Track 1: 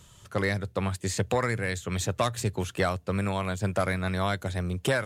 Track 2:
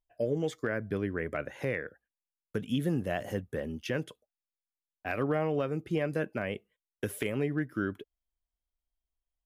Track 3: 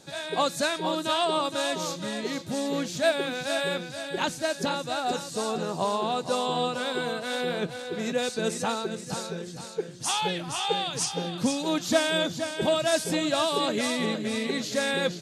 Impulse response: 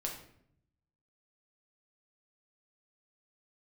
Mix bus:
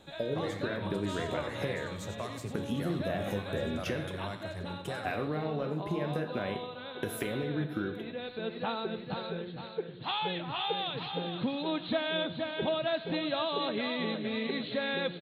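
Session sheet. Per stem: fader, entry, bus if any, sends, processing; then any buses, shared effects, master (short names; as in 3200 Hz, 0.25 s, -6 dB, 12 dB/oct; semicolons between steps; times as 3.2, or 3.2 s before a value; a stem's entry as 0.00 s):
-13.0 dB, 0.00 s, bus A, send -9.5 dB, echo send -10 dB, dry
+2.5 dB, 0.00 s, bus A, send -6.5 dB, no echo send, compressor, threshold -31 dBFS, peak gain reduction 6.5 dB
-1.0 dB, 0.00 s, no bus, no send, echo send -18 dB, Chebyshev low-pass 4100 Hz, order 8; compressor 2:1, threshold -31 dBFS, peak gain reduction 8 dB; auto duck -9 dB, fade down 0.20 s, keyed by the second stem
bus A: 0.0 dB, bell 5000 Hz -6.5 dB 2.7 oct; compressor, threshold -36 dBFS, peak gain reduction 8.5 dB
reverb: on, RT60 0.65 s, pre-delay 6 ms
echo: feedback echo 95 ms, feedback 46%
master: dry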